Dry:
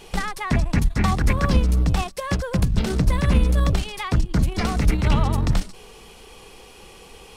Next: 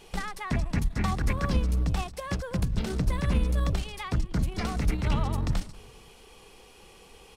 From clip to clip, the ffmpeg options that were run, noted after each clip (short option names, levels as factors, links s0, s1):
-filter_complex "[0:a]asplit=2[s0][s1];[s1]adelay=192,lowpass=f=3000:p=1,volume=0.0794,asplit=2[s2][s3];[s3]adelay=192,lowpass=f=3000:p=1,volume=0.49,asplit=2[s4][s5];[s5]adelay=192,lowpass=f=3000:p=1,volume=0.49[s6];[s0][s2][s4][s6]amix=inputs=4:normalize=0,volume=0.422"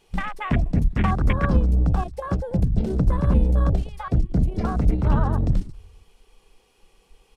-af "afwtdn=0.02,volume=2.24"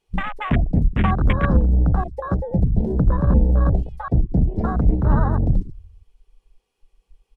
-af "afwtdn=0.0355,volume=1.33"